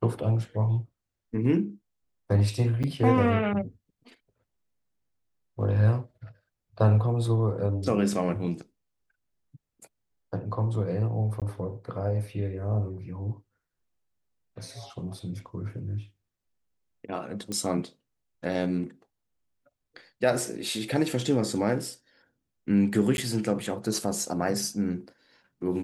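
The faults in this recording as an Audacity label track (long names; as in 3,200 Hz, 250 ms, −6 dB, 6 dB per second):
2.830000	2.840000	drop-out 7.5 ms
11.400000	11.420000	drop-out 17 ms
17.520000	17.520000	click −19 dBFS
23.170000	23.180000	drop-out 11 ms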